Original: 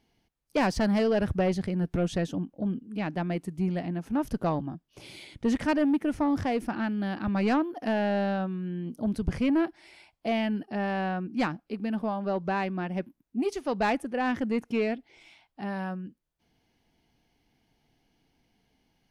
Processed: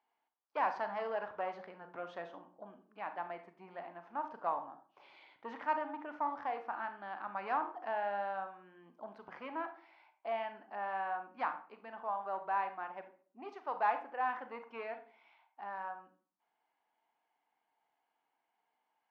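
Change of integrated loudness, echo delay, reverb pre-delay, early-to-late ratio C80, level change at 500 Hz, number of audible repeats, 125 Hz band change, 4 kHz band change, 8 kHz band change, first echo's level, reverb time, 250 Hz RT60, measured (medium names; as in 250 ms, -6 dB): -10.5 dB, no echo, 32 ms, 15.5 dB, -11.5 dB, no echo, under -30 dB, -17.0 dB, no reading, no echo, 0.45 s, 0.55 s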